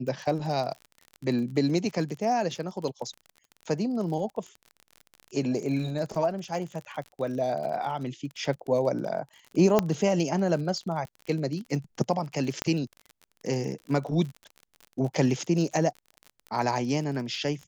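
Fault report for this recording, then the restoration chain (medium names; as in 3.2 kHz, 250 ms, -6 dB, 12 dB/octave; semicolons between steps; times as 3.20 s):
crackle 41 per s -35 dBFS
9.79 s: pop -8 dBFS
12.62 s: pop -11 dBFS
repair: de-click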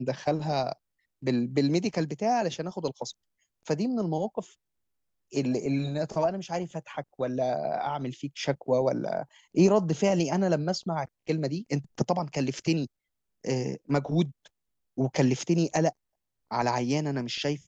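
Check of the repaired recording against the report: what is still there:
nothing left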